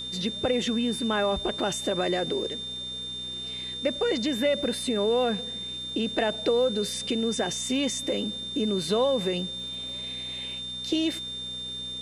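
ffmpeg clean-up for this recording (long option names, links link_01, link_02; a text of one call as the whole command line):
ffmpeg -i in.wav -af "adeclick=threshold=4,bandreject=frequency=62.4:width_type=h:width=4,bandreject=frequency=124.8:width_type=h:width=4,bandreject=frequency=187.2:width_type=h:width=4,bandreject=frequency=249.6:width_type=h:width=4,bandreject=frequency=3600:width=30,afwtdn=0.0028" out.wav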